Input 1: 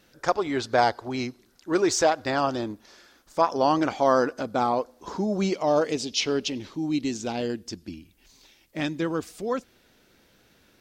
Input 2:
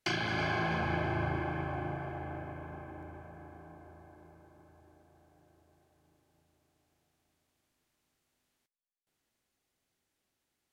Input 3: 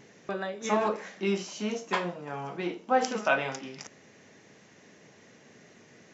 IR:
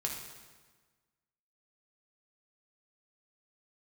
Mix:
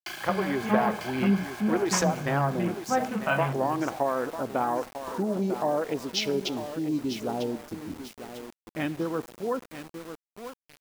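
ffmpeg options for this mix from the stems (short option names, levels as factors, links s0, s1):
-filter_complex "[0:a]acompressor=threshold=0.0794:ratio=16,afwtdn=0.0158,volume=0.708,asplit=3[s0][s1][s2];[s1]volume=0.188[s3];[s2]volume=0.335[s4];[1:a]equalizer=f=130:w=0.31:g=-14,acontrast=83,volume=0.266,asplit=2[s5][s6];[s6]volume=0.631[s7];[2:a]afwtdn=0.0126,lowshelf=f=230:t=q:w=1.5:g=13.5,volume=0.75[s8];[3:a]atrim=start_sample=2205[s9];[s3][s9]afir=irnorm=-1:irlink=0[s10];[s4][s7]amix=inputs=2:normalize=0,aecho=0:1:948|1896|2844|3792|4740:1|0.36|0.13|0.0467|0.0168[s11];[s0][s5][s8][s10][s11]amix=inputs=5:normalize=0,equalizer=f=1000:w=0.54:g=2,aeval=exprs='val(0)*gte(abs(val(0)),0.00891)':c=same,highshelf=f=7100:g=5"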